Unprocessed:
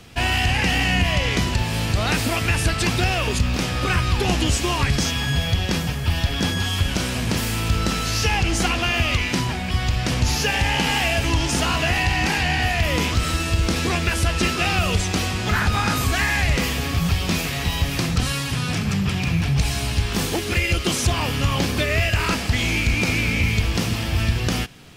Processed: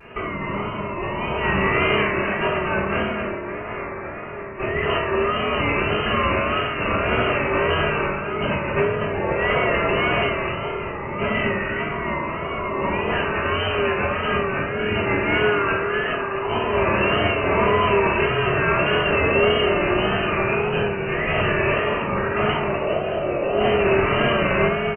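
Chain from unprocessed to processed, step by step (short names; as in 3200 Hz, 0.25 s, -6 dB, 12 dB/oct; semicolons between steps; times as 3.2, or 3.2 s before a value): 3.1–4.53 spectral limiter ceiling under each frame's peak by 24 dB; HPF 1300 Hz 6 dB/oct; negative-ratio compressor -30 dBFS, ratio -0.5; echo 0.251 s -6 dB; inverted band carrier 2900 Hz; reverb RT60 1.1 s, pre-delay 3 ms, DRR -8.5 dB; vibrato 1.7 Hz 70 cents; gain +1 dB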